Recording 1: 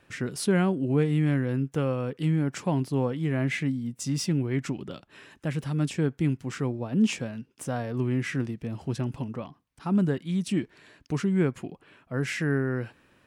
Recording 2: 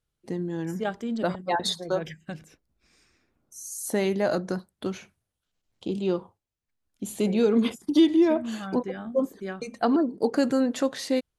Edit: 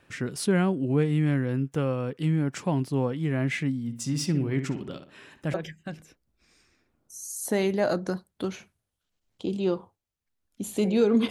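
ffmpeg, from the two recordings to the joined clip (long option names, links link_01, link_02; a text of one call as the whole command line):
ffmpeg -i cue0.wav -i cue1.wav -filter_complex "[0:a]asplit=3[link_01][link_02][link_03];[link_01]afade=type=out:start_time=3.87:duration=0.02[link_04];[link_02]asplit=2[link_05][link_06];[link_06]adelay=60,lowpass=frequency=2800:poles=1,volume=-9dB,asplit=2[link_07][link_08];[link_08]adelay=60,lowpass=frequency=2800:poles=1,volume=0.4,asplit=2[link_09][link_10];[link_10]adelay=60,lowpass=frequency=2800:poles=1,volume=0.4,asplit=2[link_11][link_12];[link_12]adelay=60,lowpass=frequency=2800:poles=1,volume=0.4[link_13];[link_05][link_07][link_09][link_11][link_13]amix=inputs=5:normalize=0,afade=type=in:start_time=3.87:duration=0.02,afade=type=out:start_time=5.54:duration=0.02[link_14];[link_03]afade=type=in:start_time=5.54:duration=0.02[link_15];[link_04][link_14][link_15]amix=inputs=3:normalize=0,apad=whole_dur=11.3,atrim=end=11.3,atrim=end=5.542[link_16];[1:a]atrim=start=1.958:end=7.72[link_17];[link_16][link_17]acrossfade=duration=0.004:curve1=hsin:curve2=hsin" out.wav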